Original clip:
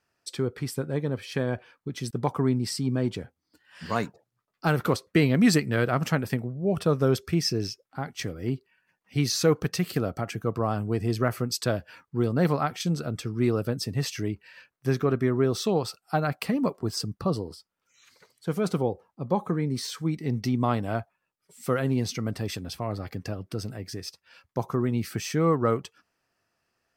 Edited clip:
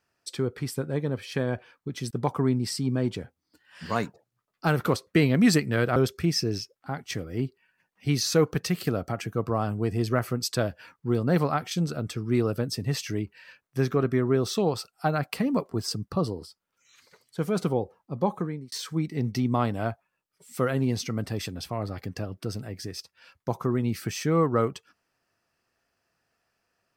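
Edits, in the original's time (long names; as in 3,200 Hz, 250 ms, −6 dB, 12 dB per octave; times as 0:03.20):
0:05.96–0:07.05: remove
0:19.41–0:19.81: fade out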